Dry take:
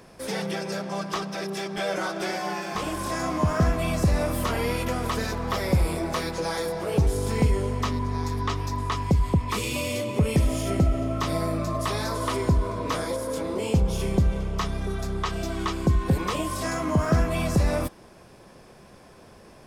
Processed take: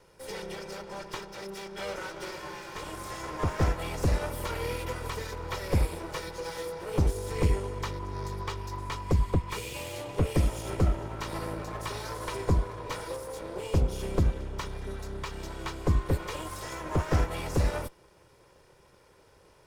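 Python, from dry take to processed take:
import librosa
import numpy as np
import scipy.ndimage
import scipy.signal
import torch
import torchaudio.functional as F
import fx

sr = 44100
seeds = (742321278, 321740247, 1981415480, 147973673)

y = fx.lower_of_two(x, sr, delay_ms=2.1)
y = fx.upward_expand(y, sr, threshold_db=-30.0, expansion=1.5)
y = F.gain(torch.from_numpy(y), -1.5).numpy()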